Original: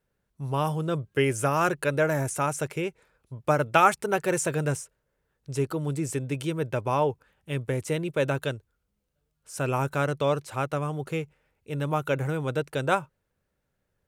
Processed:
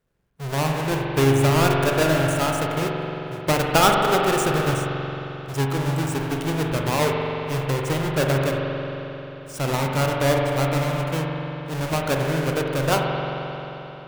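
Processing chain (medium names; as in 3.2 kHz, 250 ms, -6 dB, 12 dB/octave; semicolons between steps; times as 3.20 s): square wave that keeps the level; spring tank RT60 3.7 s, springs 44 ms, chirp 75 ms, DRR -0.5 dB; trim -2 dB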